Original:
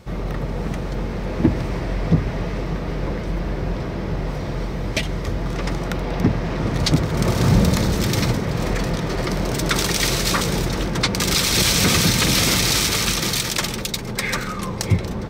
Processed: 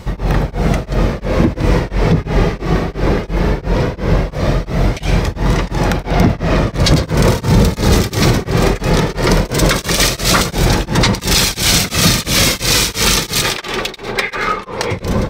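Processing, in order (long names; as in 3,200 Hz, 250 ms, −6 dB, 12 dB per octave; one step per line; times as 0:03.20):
0:13.42–0:14.97: three-way crossover with the lows and the highs turned down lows −13 dB, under 330 Hz, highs −15 dB, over 4,000 Hz
on a send at −12 dB: convolution reverb RT60 0.45 s, pre-delay 95 ms
on the sum: flanger 0.18 Hz, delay 1 ms, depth 1.7 ms, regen +66%
boost into a limiter +17 dB
tremolo along a rectified sine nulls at 2.9 Hz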